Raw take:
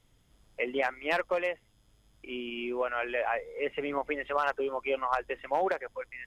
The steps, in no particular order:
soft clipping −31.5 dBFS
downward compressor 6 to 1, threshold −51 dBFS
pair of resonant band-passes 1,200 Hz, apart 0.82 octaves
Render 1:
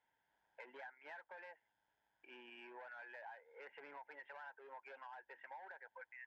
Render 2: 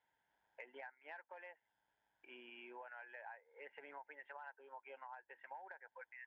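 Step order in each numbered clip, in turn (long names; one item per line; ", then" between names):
soft clipping, then pair of resonant band-passes, then downward compressor
pair of resonant band-passes, then downward compressor, then soft clipping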